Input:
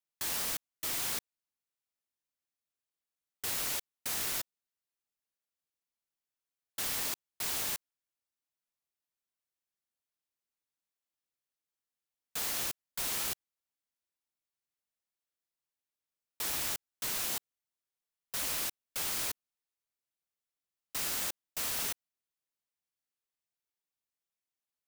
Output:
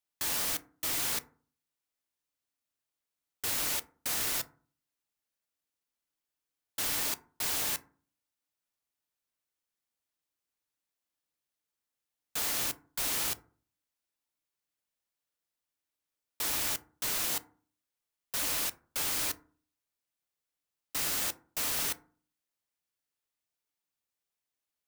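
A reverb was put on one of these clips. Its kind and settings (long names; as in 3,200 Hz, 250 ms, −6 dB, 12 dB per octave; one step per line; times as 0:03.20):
feedback delay network reverb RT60 0.43 s, low-frequency decay 1.3×, high-frequency decay 0.4×, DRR 11 dB
level +2.5 dB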